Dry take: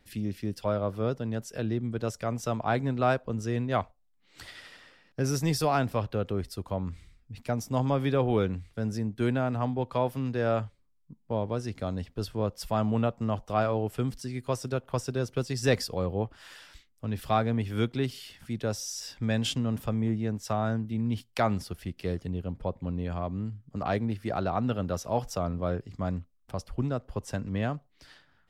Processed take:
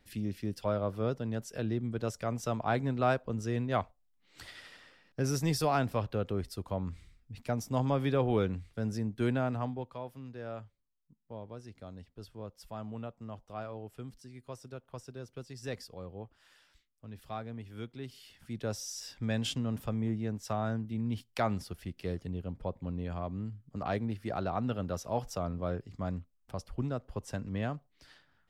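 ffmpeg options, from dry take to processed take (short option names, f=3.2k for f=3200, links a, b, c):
-af "volume=7dB,afade=t=out:st=9.46:d=0.51:silence=0.266073,afade=t=in:st=17.99:d=0.73:silence=0.316228"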